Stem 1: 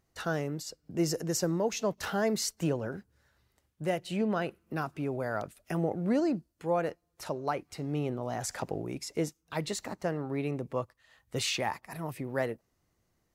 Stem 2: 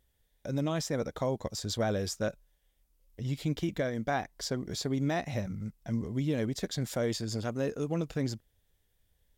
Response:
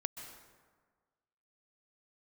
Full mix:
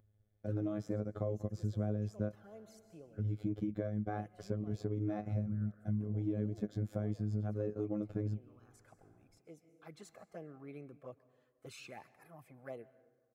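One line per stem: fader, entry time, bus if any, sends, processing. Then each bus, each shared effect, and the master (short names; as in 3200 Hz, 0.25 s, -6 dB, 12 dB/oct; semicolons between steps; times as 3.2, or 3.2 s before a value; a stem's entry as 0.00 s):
-10.5 dB, 0.30 s, send -9.5 dB, high shelf 4600 Hz -5.5 dB; envelope flanger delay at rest 5.2 ms, full sweep at -26.5 dBFS; low shelf 490 Hz -8 dB; auto duck -18 dB, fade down 0.75 s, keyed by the second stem
-3.0 dB, 0.00 s, send -24 dB, tilt -4 dB/oct; robotiser 105 Hz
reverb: on, RT60 1.5 s, pre-delay 0.118 s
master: bell 4200 Hz -8 dB 1.8 oct; notch comb 940 Hz; compressor 3:1, threshold -34 dBFS, peak gain reduction 9.5 dB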